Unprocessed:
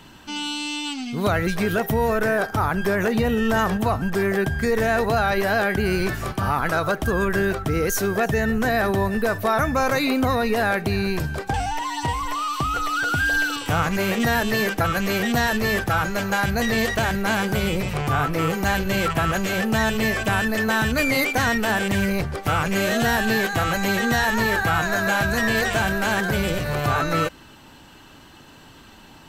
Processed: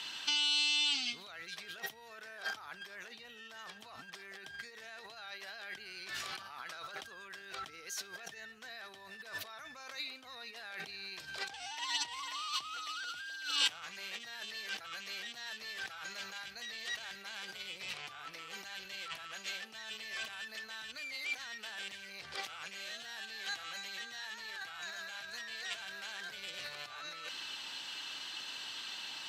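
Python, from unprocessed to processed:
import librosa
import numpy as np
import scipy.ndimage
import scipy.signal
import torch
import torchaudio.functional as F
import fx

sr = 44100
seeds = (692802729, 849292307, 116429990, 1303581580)

y = fx.over_compress(x, sr, threshold_db=-33.0, ratio=-1.0)
y = fx.bandpass_q(y, sr, hz=3900.0, q=1.5)
y = F.gain(torch.from_numpy(y), 1.0).numpy()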